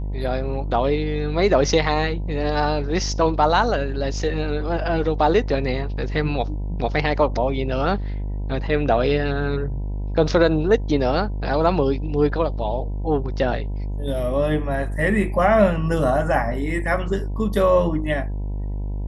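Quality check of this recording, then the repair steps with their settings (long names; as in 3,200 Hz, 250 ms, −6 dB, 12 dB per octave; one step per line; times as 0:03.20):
mains buzz 50 Hz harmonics 20 −26 dBFS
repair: hum removal 50 Hz, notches 20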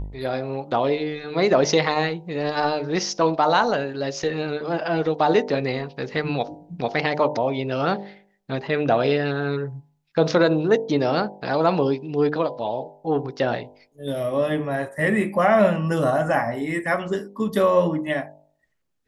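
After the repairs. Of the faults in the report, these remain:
none of them is left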